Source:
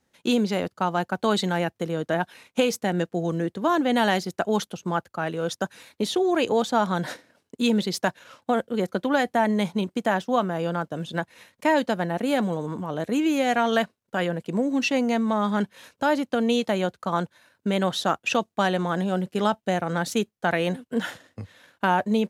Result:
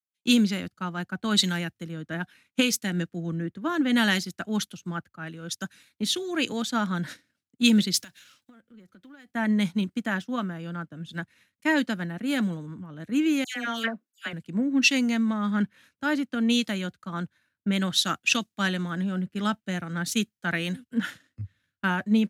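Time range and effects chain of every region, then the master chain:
7.97–9.31 s: companding laws mixed up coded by mu + compression 4:1, threshold -34 dBFS
13.44–14.33 s: high-pass 240 Hz 24 dB/octave + de-esser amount 50% + phase dispersion lows, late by 118 ms, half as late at 2.1 kHz
whole clip: high-order bell 640 Hz -11.5 dB; band-stop 740 Hz, Q 22; three bands expanded up and down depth 100%

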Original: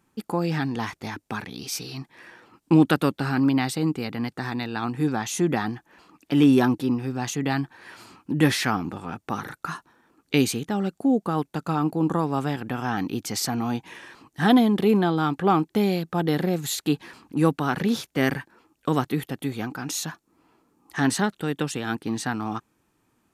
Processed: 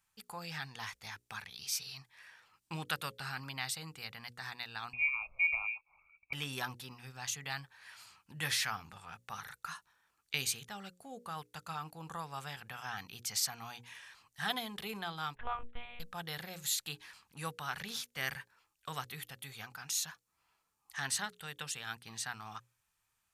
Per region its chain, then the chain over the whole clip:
4.93–6.33 s: elliptic band-stop 420–1400 Hz + frequency inversion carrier 2.6 kHz
15.35–16.00 s: low-pass 2.5 kHz + monotone LPC vocoder at 8 kHz 240 Hz
whole clip: amplifier tone stack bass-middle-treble 10-0-10; hum notches 60/120/180/240/300/360/420/480/540 Hz; trim -4 dB

